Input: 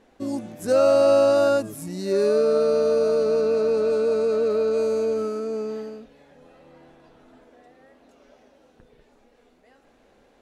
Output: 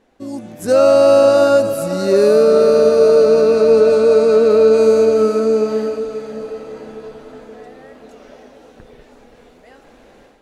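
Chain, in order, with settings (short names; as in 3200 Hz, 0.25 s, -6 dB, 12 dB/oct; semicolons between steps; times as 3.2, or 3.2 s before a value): AGC gain up to 13 dB; on a send: diffused feedback echo 0.528 s, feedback 50%, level -11 dB; on the sum: gain -1 dB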